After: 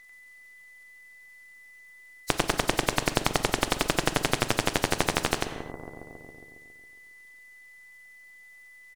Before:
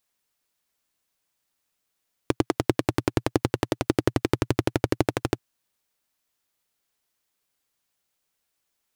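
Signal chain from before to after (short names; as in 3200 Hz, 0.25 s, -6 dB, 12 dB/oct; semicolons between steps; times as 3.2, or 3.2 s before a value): nonlinear frequency compression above 3800 Hz 1.5:1; half-wave rectifier; on a send: dark delay 0.137 s, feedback 61%, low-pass 610 Hz, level -11 dB; on the sum: whine 2000 Hz -60 dBFS; reverb removal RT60 0.52 s; echo 94 ms -5.5 dB; non-linear reverb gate 0.3 s falling, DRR 11.5 dB; spectral compressor 2:1; gain +1.5 dB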